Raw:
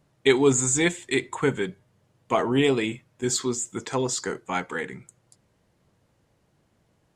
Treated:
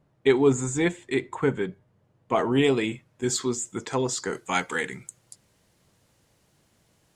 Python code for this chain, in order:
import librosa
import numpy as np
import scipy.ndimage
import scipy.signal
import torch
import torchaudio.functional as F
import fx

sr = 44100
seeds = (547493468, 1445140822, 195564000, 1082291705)

y = fx.high_shelf(x, sr, hz=2600.0, db=fx.steps((0.0, -11.5), (2.35, -2.0), (4.32, 11.0)))